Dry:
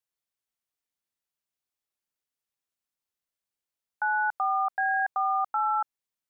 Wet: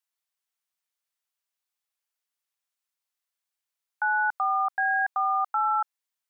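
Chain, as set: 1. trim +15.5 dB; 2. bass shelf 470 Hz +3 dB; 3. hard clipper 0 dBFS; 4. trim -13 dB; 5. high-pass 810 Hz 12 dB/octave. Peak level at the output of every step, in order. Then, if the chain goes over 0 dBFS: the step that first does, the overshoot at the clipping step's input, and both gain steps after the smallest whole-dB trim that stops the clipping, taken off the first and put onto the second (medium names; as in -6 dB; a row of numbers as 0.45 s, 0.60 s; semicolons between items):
-4.0 dBFS, -3.5 dBFS, -3.5 dBFS, -16.5 dBFS, -18.0 dBFS; nothing clips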